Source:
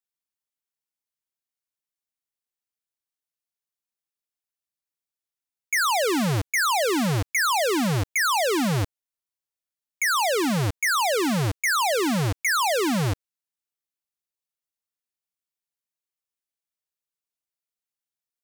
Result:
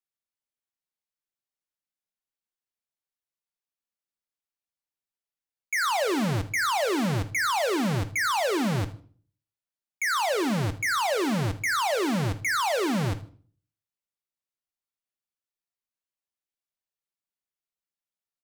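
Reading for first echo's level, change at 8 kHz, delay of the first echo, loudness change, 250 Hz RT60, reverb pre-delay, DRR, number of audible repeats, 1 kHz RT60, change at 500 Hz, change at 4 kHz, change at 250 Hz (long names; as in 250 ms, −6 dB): −18.5 dB, −6.0 dB, 78 ms, −3.5 dB, 0.50 s, 3 ms, 10.0 dB, 2, 0.40 s, −2.5 dB, −4.5 dB, −2.5 dB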